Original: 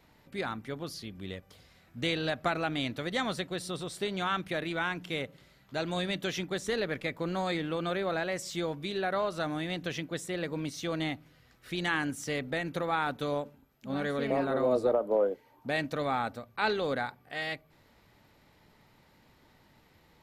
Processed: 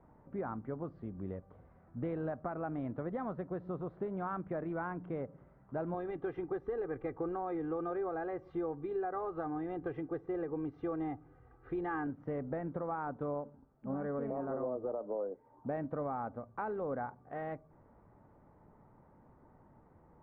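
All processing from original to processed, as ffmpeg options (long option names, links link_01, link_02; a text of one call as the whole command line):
ffmpeg -i in.wav -filter_complex "[0:a]asettb=1/sr,asplit=3[link_01][link_02][link_03];[link_01]atrim=end=5.944[link_04];[link_02]atrim=start=5.94:end=12.07,asetpts=PTS-STARTPTS,afade=type=in:duration=0.004:curve=qsin,afade=type=out:start_time=6.126:duration=0.004:curve=qsin,highshelf=frequency=4000:gain=7,aecho=1:1:2.5:0.8,atrim=end_sample=270333[link_05];[link_03]atrim=start=12.066[link_06];[link_04][link_05]acrossfade=duration=0.004:curve1=hsin:curve2=qsin[link_07];[link_07][link_06]acrossfade=duration=0.004:curve1=qsin:curve2=hsin,lowpass=frequency=1200:width=0.5412,lowpass=frequency=1200:width=1.3066,alimiter=level_in=0.5dB:limit=-24dB:level=0:latency=1:release=467,volume=-0.5dB,acompressor=threshold=-39dB:ratio=2,volume=1.5dB" out.wav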